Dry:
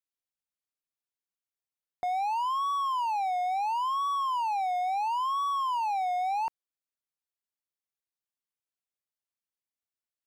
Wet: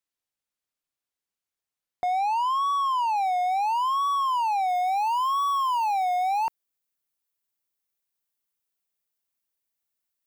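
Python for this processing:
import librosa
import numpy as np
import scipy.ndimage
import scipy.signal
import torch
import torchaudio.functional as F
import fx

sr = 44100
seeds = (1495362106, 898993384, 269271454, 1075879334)

y = fx.high_shelf(x, sr, hz=11000.0, db=fx.steps((0.0, -3.5), (3.16, 4.0), (4.68, 11.0)))
y = y * 10.0 ** (4.5 / 20.0)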